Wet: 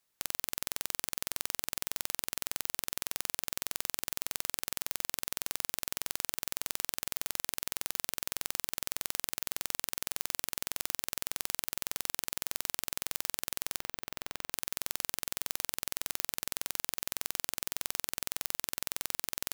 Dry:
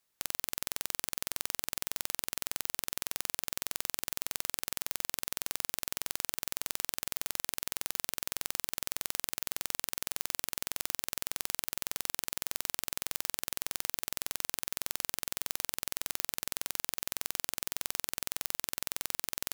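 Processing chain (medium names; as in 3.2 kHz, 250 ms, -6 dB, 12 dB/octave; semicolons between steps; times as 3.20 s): 13.80–14.52 s: peaking EQ 11 kHz -12.5 dB 2.1 oct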